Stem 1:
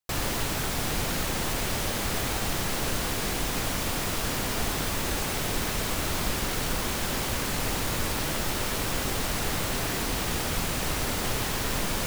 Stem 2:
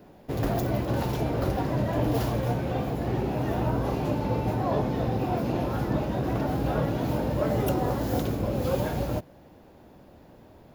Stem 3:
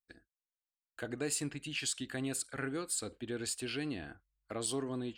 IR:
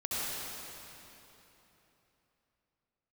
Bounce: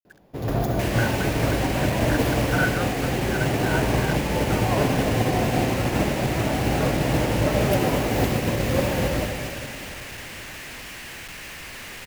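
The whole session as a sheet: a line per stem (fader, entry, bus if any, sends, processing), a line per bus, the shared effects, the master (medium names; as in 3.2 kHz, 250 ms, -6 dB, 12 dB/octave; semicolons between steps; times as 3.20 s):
-7.0 dB, 0.70 s, no send, high-order bell 2.2 kHz +13.5 dB 1.1 oct; Schmitt trigger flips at -34 dBFS
0.0 dB, 0.05 s, send -4.5 dB, none
+2.5 dB, 0.00 s, no send, peak limiter -29 dBFS, peak gain reduction 7 dB; resonant low-pass 1.5 kHz, resonance Q 13; bit crusher 8-bit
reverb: on, RT60 3.4 s, pre-delay 61 ms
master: upward expansion 1.5:1, over -35 dBFS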